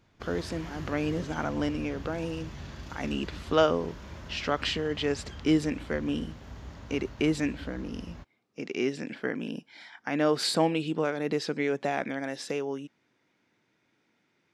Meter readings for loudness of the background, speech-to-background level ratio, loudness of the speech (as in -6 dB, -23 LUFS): -44.0 LUFS, 13.5 dB, -30.5 LUFS